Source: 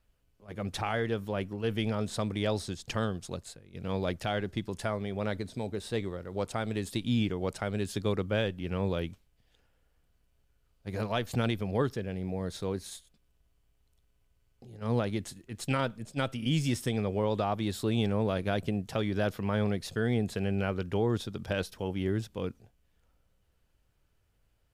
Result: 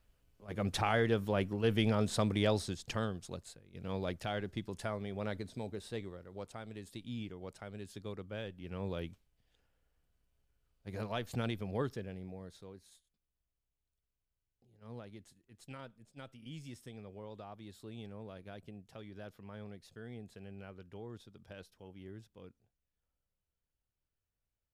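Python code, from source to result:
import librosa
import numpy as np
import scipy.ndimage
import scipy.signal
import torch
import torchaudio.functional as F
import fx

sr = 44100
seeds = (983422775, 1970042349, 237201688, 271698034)

y = fx.gain(x, sr, db=fx.line((2.36, 0.5), (3.15, -6.0), (5.6, -6.0), (6.64, -14.0), (8.31, -14.0), (9.04, -7.0), (12.0, -7.0), (12.73, -19.0)))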